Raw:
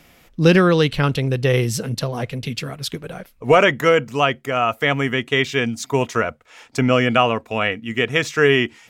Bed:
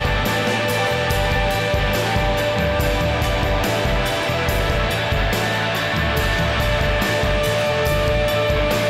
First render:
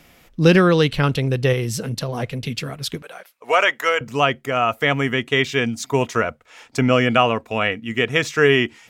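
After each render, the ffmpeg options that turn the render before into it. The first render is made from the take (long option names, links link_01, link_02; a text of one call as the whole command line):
ffmpeg -i in.wav -filter_complex "[0:a]asettb=1/sr,asplit=3[link_01][link_02][link_03];[link_01]atrim=end=1.534[link_04];[link_02]atrim=start=1.53:end=2.09,asetpts=PTS-STARTPTS,afade=type=in:duration=0.004:curve=qsin,afade=type=out:start_time=0.556:duration=0.004:curve=qsin,acompressor=threshold=-22dB:ratio=2:attack=3.2:release=140:knee=1:detection=peak[link_05];[link_03]atrim=start=2.086[link_06];[link_04][link_05]acrossfade=duration=0.004:curve1=hsin:curve2=qsin[link_07];[link_07][link_06]acrossfade=duration=0.004:curve1=qsin:curve2=hsin,asettb=1/sr,asplit=3[link_08][link_09][link_10];[link_08]atrim=end=3.024[link_11];[link_09]atrim=start=3.02:end=4.01,asetpts=PTS-STARTPTS,afade=type=in:duration=0.004:curve=qsin,afade=type=out:start_time=0.986:duration=0.004:curve=qsin,highpass=720[link_12];[link_10]atrim=start=4.006[link_13];[link_11][link_12]acrossfade=duration=0.004:curve1=hsin:curve2=qsin[link_14];[link_14][link_13]acrossfade=duration=0.004:curve1=qsin:curve2=hsin" out.wav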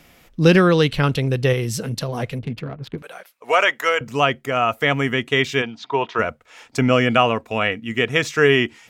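ffmpeg -i in.wav -filter_complex "[0:a]asettb=1/sr,asplit=3[link_01][link_02][link_03];[link_01]atrim=end=2.394[link_04];[link_02]atrim=start=2.39:end=2.98,asetpts=PTS-STARTPTS,afade=type=in:duration=0.004:curve=qsin,afade=type=out:start_time=0.586:duration=0.004:curve=qsin,adynamicsmooth=sensitivity=1:basefreq=940[link_05];[link_03]atrim=start=2.976[link_06];[link_04][link_05]acrossfade=duration=0.004:curve1=hsin:curve2=qsin[link_07];[link_07][link_06]acrossfade=duration=0.004:curve1=qsin:curve2=hsin,asplit=3[link_08][link_09][link_10];[link_08]afade=type=out:start_time=5.61:duration=0.02[link_11];[link_09]highpass=230,equalizer=frequency=250:width_type=q:width=4:gain=-9,equalizer=frequency=550:width_type=q:width=4:gain=-6,equalizer=frequency=940:width_type=q:width=4:gain=5,equalizer=frequency=2100:width_type=q:width=4:gain=-5,equalizer=frequency=3500:width_type=q:width=4:gain=3,lowpass=frequency=3900:width=0.5412,lowpass=frequency=3900:width=1.3066,afade=type=in:start_time=5.61:duration=0.02,afade=type=out:start_time=6.18:duration=0.02[link_12];[link_10]afade=type=in:start_time=6.18:duration=0.02[link_13];[link_11][link_12][link_13]amix=inputs=3:normalize=0" out.wav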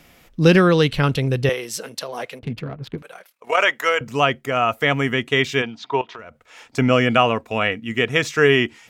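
ffmpeg -i in.wav -filter_complex "[0:a]asettb=1/sr,asplit=3[link_01][link_02][link_03];[link_01]atrim=end=1.494[link_04];[link_02]atrim=start=1.49:end=2.43,asetpts=PTS-STARTPTS,afade=type=in:duration=0.004:curve=qsin,afade=type=out:start_time=0.936:duration=0.004:curve=qsin,highpass=460[link_05];[link_03]atrim=start=2.426[link_06];[link_04][link_05]acrossfade=duration=0.004:curve1=hsin:curve2=qsin[link_07];[link_07][link_06]acrossfade=duration=0.004:curve1=qsin:curve2=hsin,asplit=3[link_08][link_09][link_10];[link_08]afade=type=out:start_time=3.01:duration=0.02[link_11];[link_09]tremolo=f=38:d=0.621,afade=type=in:start_time=3.01:duration=0.02,afade=type=out:start_time=3.57:duration=0.02[link_12];[link_10]afade=type=in:start_time=3.57:duration=0.02[link_13];[link_11][link_12][link_13]amix=inputs=3:normalize=0,asettb=1/sr,asplit=3[link_14][link_15][link_16];[link_14]atrim=end=6.014[link_17];[link_15]atrim=start=6.01:end=6.77,asetpts=PTS-STARTPTS,afade=type=in:duration=0.004:curve=qsin,afade=type=out:start_time=0.756:duration=0.004:curve=qsin,acompressor=threshold=-33dB:ratio=12:attack=3.2:release=140:knee=1:detection=peak[link_18];[link_16]atrim=start=6.766[link_19];[link_17][link_18]acrossfade=duration=0.004:curve1=hsin:curve2=qsin[link_20];[link_20][link_19]acrossfade=duration=0.004:curve1=qsin:curve2=hsin" out.wav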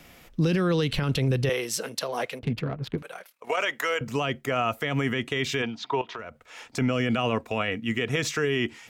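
ffmpeg -i in.wav -filter_complex "[0:a]acrossover=split=410|3000[link_01][link_02][link_03];[link_02]acompressor=threshold=-20dB:ratio=6[link_04];[link_01][link_04][link_03]amix=inputs=3:normalize=0,alimiter=limit=-16dB:level=0:latency=1:release=46" out.wav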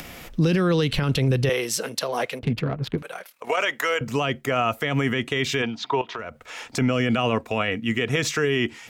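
ffmpeg -i in.wav -filter_complex "[0:a]asplit=2[link_01][link_02];[link_02]alimiter=limit=-23dB:level=0:latency=1:release=432,volume=0dB[link_03];[link_01][link_03]amix=inputs=2:normalize=0,acompressor=mode=upward:threshold=-33dB:ratio=2.5" out.wav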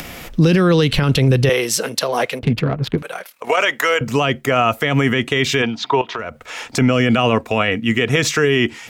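ffmpeg -i in.wav -af "volume=7dB" out.wav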